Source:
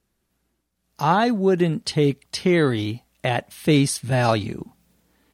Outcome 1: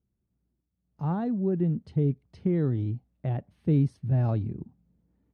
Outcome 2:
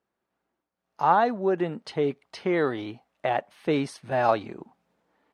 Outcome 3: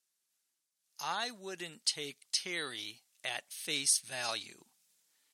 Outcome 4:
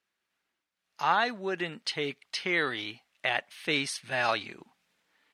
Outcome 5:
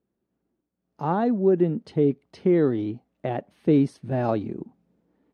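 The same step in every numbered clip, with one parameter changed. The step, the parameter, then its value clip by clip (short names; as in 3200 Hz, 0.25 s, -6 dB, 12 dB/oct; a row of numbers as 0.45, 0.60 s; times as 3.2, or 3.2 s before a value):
band-pass, frequency: 100, 830, 7500, 2200, 320 Hz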